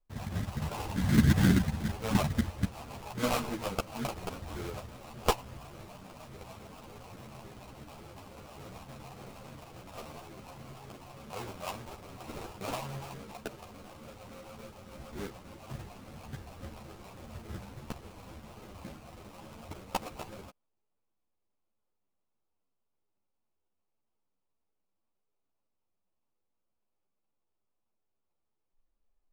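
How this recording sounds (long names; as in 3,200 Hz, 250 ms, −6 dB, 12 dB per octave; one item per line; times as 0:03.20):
phaser sweep stages 12, 3.5 Hz, lowest notch 330–1,600 Hz
aliases and images of a low sample rate 1,800 Hz, jitter 20%
a shimmering, thickened sound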